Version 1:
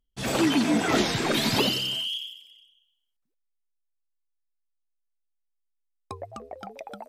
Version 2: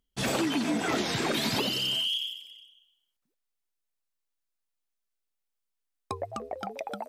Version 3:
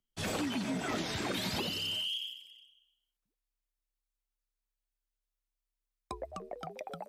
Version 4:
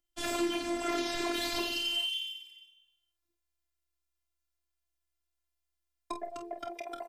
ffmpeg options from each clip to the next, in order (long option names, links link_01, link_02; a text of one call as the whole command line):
ffmpeg -i in.wav -af "lowshelf=frequency=62:gain=-10,acompressor=threshold=-30dB:ratio=5,volume=4dB" out.wav
ffmpeg -i in.wav -af "afreqshift=-34,volume=-6.5dB" out.wav
ffmpeg -i in.wav -af "aecho=1:1:27|48:0.299|0.376,afftfilt=real='hypot(re,im)*cos(PI*b)':imag='0':win_size=512:overlap=0.75,volume=5dB" out.wav